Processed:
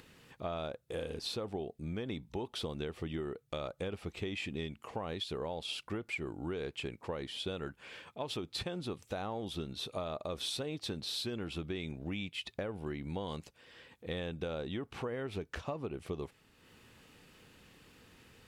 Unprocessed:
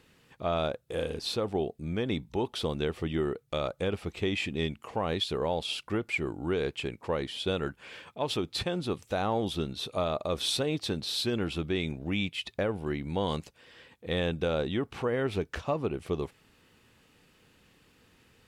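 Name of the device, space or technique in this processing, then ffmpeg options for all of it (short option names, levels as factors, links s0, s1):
upward and downward compression: -af "acompressor=mode=upward:threshold=0.00398:ratio=2.5,acompressor=threshold=0.0282:ratio=6,volume=0.668"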